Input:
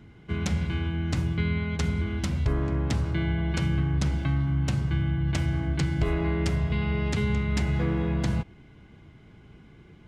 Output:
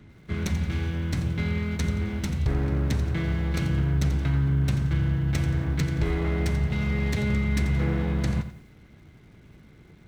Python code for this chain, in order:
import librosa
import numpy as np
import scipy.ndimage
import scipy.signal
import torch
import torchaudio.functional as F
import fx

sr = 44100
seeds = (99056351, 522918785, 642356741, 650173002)

y = fx.lower_of_two(x, sr, delay_ms=0.5)
y = fx.echo_crushed(y, sr, ms=87, feedback_pct=35, bits=9, wet_db=-11.5)